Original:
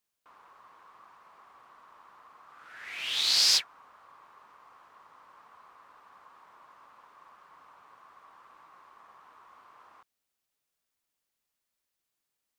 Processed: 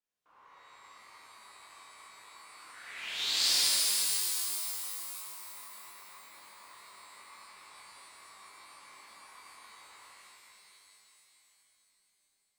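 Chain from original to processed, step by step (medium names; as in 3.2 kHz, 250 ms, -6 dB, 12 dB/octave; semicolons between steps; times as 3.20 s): chorus voices 6, 0.29 Hz, delay 29 ms, depth 2.4 ms; treble shelf 9 kHz -11.5 dB; pitch-shifted reverb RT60 3.4 s, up +12 st, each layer -2 dB, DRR -7 dB; trim -6 dB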